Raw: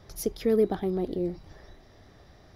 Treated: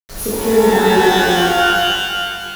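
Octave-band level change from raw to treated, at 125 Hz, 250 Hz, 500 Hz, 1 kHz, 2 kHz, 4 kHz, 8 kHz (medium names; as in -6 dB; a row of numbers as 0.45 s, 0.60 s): +12.5 dB, +12.5 dB, +13.5 dB, +28.0 dB, +34.0 dB, +31.5 dB, no reading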